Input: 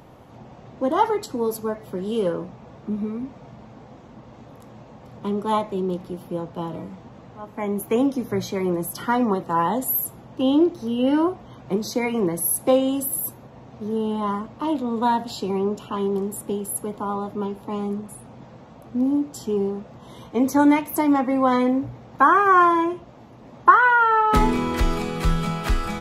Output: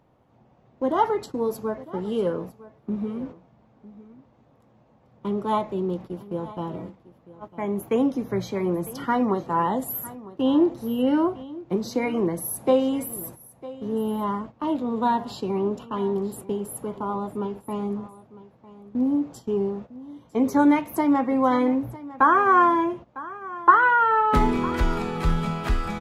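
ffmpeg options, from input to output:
-af "agate=range=0.224:threshold=0.0178:ratio=16:detection=peak,highshelf=f=3900:g=-7.5,aecho=1:1:953:0.126,volume=0.841"

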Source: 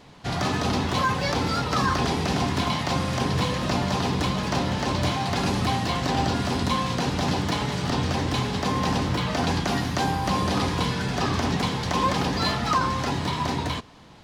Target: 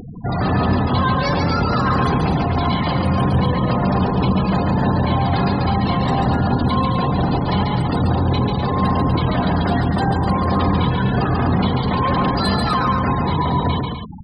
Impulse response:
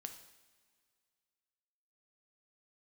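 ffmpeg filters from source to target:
-filter_complex "[0:a]asoftclip=type=tanh:threshold=0.0501,asplit=2[s0][s1];[1:a]atrim=start_sample=2205,lowshelf=f=240:g=5[s2];[s1][s2]afir=irnorm=-1:irlink=0,volume=1.19[s3];[s0][s3]amix=inputs=2:normalize=0,acompressor=mode=upward:threshold=0.0447:ratio=2.5,aexciter=amount=3.7:drive=2.7:freq=7900,afftfilt=real='re*gte(hypot(re,im),0.0631)':imag='im*gte(hypot(re,im),0.0631)':win_size=1024:overlap=0.75,aecho=1:1:139.9|250.7:0.631|0.398,volume=1.78"

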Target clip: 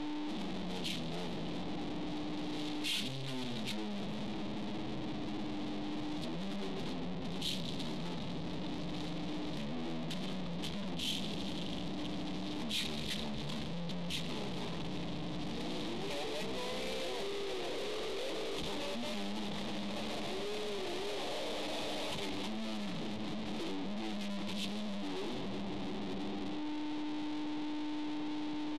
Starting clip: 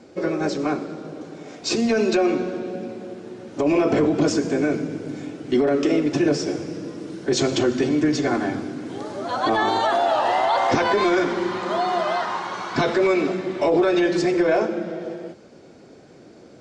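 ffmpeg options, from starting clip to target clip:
-filter_complex "[0:a]aeval=exprs='val(0)+0.0178*sin(2*PI*520*n/s)':c=same,acrossover=split=130[s0][s1];[s1]acompressor=threshold=0.0708:ratio=4[s2];[s0][s2]amix=inputs=2:normalize=0,acrossover=split=3800[s3][s4];[s3]alimiter=limit=0.075:level=0:latency=1[s5];[s5][s4]amix=inputs=2:normalize=0,acompressor=threshold=0.0224:ratio=6,aeval=exprs='(tanh(447*val(0)+0.75)-tanh(0.75))/447':c=same,equalizer=f=160:t=o:w=0.67:g=-12,equalizer=f=2500:t=o:w=0.67:g=-9,equalizer=f=6300:t=o:w=0.67:g=9,asplit=2[s6][s7];[s7]aecho=0:1:244:0.0944[s8];[s6][s8]amix=inputs=2:normalize=0,asetrate=25442,aresample=44100,volume=5.31"

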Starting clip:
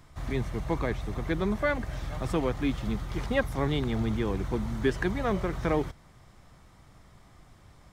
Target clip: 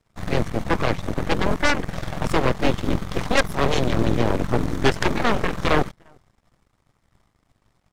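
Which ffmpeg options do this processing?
-filter_complex "[0:a]asplit=2[s0][s1];[s1]adelay=349.9,volume=0.0891,highshelf=f=4000:g=-7.87[s2];[s0][s2]amix=inputs=2:normalize=0,aeval=exprs='0.251*(cos(1*acos(clip(val(0)/0.251,-1,1)))-cos(1*PI/2))+0.0316*(cos(7*acos(clip(val(0)/0.251,-1,1)))-cos(7*PI/2))+0.0708*(cos(8*acos(clip(val(0)/0.251,-1,1)))-cos(8*PI/2))':c=same,volume=1.88"

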